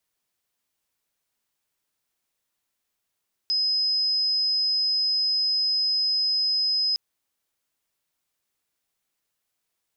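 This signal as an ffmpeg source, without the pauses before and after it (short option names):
-f lavfi -i "sine=f=5060:d=3.46:r=44100,volume=-2.44dB"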